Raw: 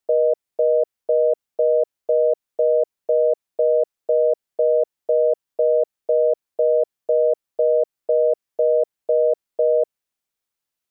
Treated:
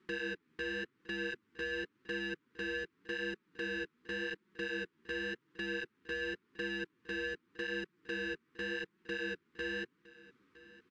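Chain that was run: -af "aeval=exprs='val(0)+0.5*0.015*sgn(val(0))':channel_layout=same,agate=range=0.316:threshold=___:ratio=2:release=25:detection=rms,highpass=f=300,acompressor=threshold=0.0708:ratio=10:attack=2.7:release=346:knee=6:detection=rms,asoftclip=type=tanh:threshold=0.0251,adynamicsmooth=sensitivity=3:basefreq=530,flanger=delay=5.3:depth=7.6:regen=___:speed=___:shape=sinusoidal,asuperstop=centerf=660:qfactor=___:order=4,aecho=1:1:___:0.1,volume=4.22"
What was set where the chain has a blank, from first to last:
0.0224, -2, 0.89, 0.63, 961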